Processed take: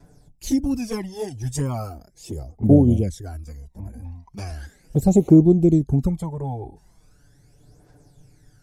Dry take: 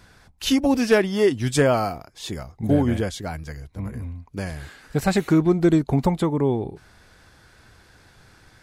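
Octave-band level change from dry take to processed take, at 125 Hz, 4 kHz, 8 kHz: +4.0 dB, below −10 dB, −2.5 dB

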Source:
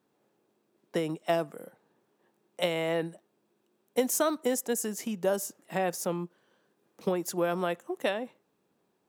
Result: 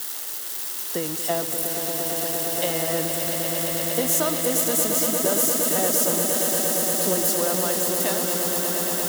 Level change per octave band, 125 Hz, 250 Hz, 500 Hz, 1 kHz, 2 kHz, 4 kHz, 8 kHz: +7.0, +6.0, +5.5, +5.5, +7.0, +12.5, +16.5 decibels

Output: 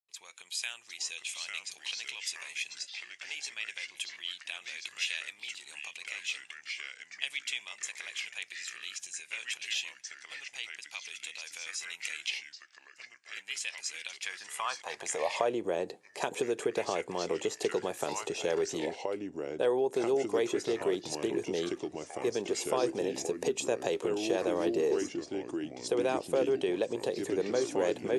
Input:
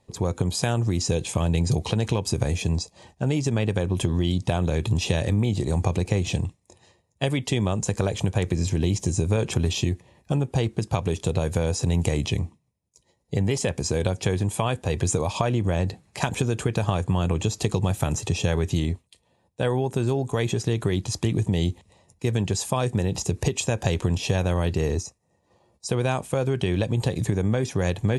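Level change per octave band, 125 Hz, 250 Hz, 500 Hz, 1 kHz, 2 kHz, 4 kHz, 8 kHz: −30.0, −11.0, −4.0, −6.5, −2.5, −4.0, −7.0 decibels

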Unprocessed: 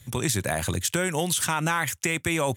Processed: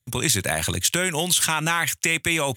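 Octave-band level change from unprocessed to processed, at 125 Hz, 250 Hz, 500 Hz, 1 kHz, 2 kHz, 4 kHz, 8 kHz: 0.0, 0.0, +0.5, +1.5, +5.0, +7.5, +5.5 decibels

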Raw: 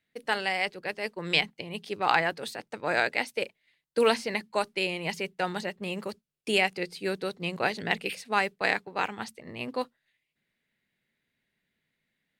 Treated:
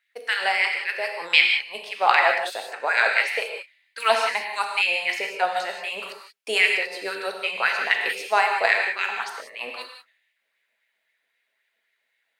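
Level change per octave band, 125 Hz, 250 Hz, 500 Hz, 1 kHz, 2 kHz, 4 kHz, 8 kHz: below −20 dB, −12.0 dB, +1.5 dB, +6.5 dB, +9.0 dB, +6.5 dB, +4.5 dB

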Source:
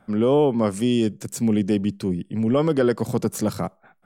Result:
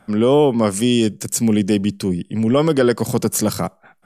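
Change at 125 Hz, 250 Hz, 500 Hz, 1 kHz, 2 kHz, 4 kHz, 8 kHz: +4.0, +4.0, +4.0, +5.0, +6.5, +9.0, +11.5 decibels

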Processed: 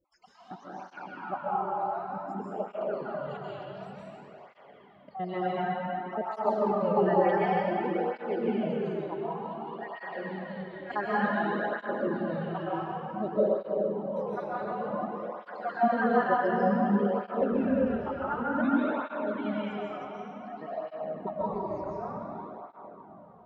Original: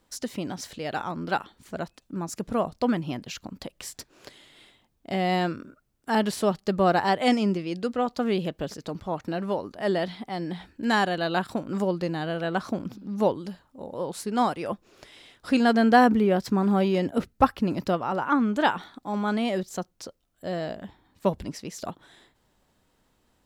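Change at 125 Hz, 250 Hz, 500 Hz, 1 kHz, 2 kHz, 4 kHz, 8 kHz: −6.0 dB, −5.5 dB, −1.5 dB, −3.0 dB, −4.5 dB, −15.5 dB, below −30 dB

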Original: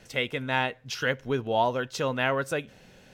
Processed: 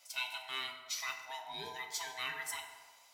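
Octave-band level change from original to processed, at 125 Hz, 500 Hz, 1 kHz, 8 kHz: −29.5, −25.0, −14.5, +0.5 decibels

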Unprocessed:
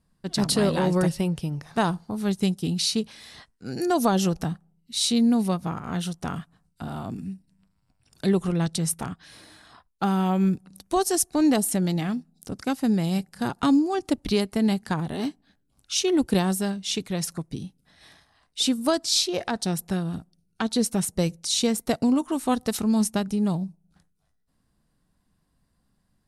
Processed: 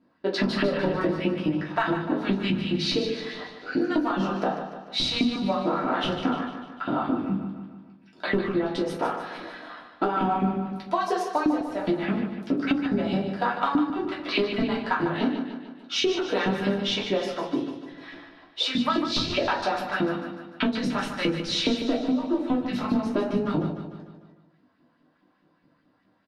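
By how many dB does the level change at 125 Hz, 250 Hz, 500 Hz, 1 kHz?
−5.0, −2.0, +0.5, +3.0 decibels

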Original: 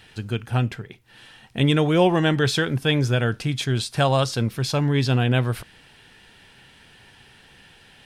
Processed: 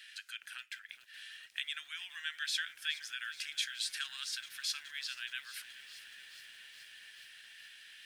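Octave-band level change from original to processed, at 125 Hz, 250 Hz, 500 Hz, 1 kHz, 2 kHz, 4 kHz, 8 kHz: below −40 dB, below −40 dB, below −40 dB, −27.5 dB, −11.0 dB, −8.5 dB, −7.0 dB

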